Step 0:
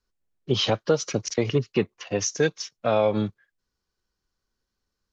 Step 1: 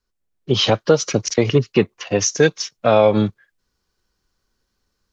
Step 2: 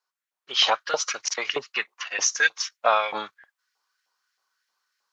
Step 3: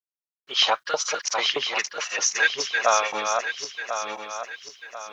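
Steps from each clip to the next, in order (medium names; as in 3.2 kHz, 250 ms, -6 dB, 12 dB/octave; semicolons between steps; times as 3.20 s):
level rider gain up to 7.5 dB; trim +1.5 dB
LFO high-pass saw up 3.2 Hz 760–2000 Hz; trim -3 dB
backward echo that repeats 521 ms, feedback 61%, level -5 dB; bit crusher 12-bit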